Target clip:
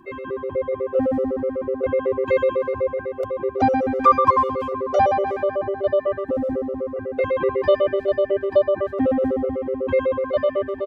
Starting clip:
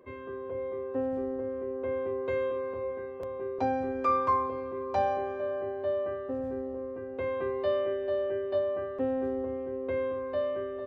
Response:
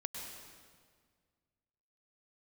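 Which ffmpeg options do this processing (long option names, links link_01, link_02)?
-filter_complex "[0:a]acontrast=43,asplit=2[link_01][link_02];[link_02]adelay=320,highpass=300,lowpass=3400,asoftclip=type=hard:threshold=-19dB,volume=-19dB[link_03];[link_01][link_03]amix=inputs=2:normalize=0,afftfilt=real='re*gt(sin(2*PI*8*pts/sr)*(1-2*mod(floor(b*sr/1024/380),2)),0)':imag='im*gt(sin(2*PI*8*pts/sr)*(1-2*mod(floor(b*sr/1024/380),2)),0)':win_size=1024:overlap=0.75,volume=8dB"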